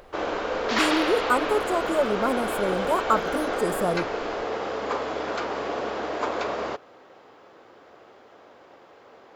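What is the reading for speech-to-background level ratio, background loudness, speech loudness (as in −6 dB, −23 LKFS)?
1.5 dB, −28.0 LKFS, −26.5 LKFS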